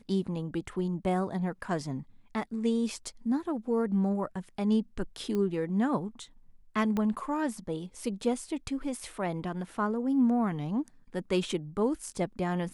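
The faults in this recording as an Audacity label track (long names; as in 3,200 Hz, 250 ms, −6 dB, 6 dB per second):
5.350000	5.350000	click −21 dBFS
6.970000	6.970000	click −19 dBFS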